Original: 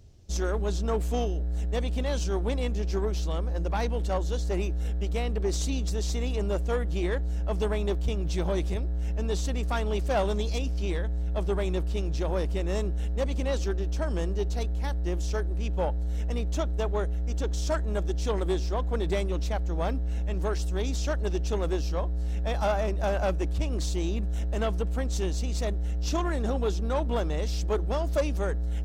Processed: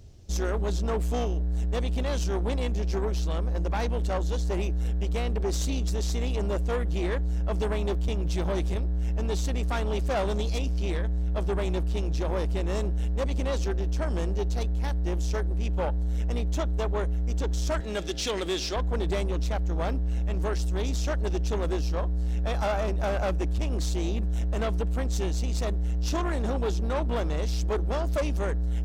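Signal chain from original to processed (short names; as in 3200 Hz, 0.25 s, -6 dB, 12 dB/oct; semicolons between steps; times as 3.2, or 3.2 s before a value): 17.8–18.76 weighting filter D; in parallel at -1 dB: limiter -23.5 dBFS, peak gain reduction 8 dB; on the sum: soft clip -20.5 dBFS, distortion -18 dB; gain -1.5 dB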